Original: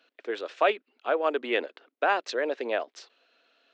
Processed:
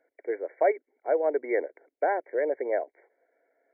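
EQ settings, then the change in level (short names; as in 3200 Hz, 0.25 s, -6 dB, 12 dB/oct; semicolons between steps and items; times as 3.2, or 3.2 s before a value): brick-wall FIR low-pass 2300 Hz; bell 130 Hz +9.5 dB 0.29 oct; fixed phaser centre 500 Hz, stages 4; +2.5 dB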